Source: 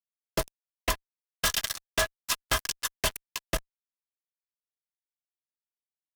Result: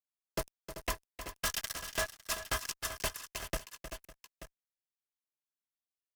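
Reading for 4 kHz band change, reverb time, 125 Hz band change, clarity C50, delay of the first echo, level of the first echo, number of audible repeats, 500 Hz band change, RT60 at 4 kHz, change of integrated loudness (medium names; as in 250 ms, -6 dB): -8.5 dB, no reverb, -6.5 dB, no reverb, 311 ms, -11.0 dB, 4, -6.0 dB, no reverb, -7.5 dB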